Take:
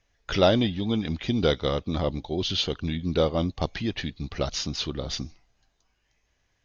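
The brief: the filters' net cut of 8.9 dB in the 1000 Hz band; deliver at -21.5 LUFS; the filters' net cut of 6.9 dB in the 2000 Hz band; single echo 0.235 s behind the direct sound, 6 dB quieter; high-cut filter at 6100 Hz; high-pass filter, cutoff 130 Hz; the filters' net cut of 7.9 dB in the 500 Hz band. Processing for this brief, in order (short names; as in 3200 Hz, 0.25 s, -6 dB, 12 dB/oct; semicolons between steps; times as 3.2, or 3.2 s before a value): HPF 130 Hz; LPF 6100 Hz; bell 500 Hz -7 dB; bell 1000 Hz -8.5 dB; bell 2000 Hz -6 dB; echo 0.235 s -6 dB; gain +8.5 dB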